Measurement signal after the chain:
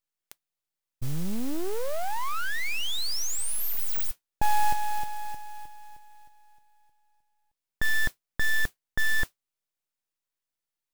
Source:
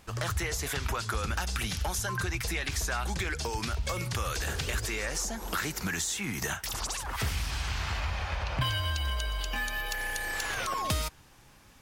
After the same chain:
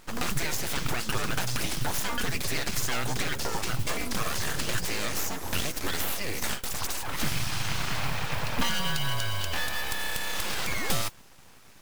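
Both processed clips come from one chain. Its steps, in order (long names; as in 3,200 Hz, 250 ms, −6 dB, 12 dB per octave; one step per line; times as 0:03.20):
full-wave rectification
noise that follows the level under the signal 19 dB
level +5 dB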